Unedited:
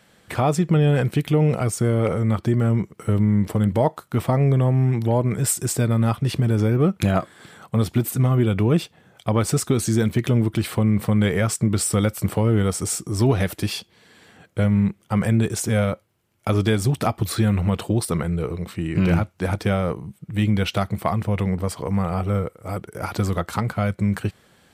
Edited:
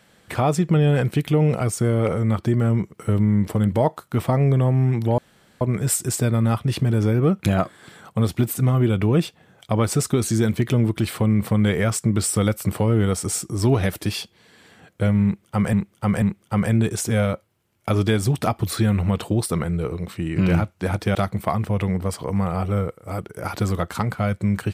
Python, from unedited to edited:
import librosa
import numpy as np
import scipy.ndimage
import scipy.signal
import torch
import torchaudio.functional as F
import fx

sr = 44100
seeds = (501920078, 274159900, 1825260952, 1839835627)

y = fx.edit(x, sr, fx.insert_room_tone(at_s=5.18, length_s=0.43),
    fx.repeat(start_s=14.81, length_s=0.49, count=3),
    fx.cut(start_s=19.74, length_s=0.99), tone=tone)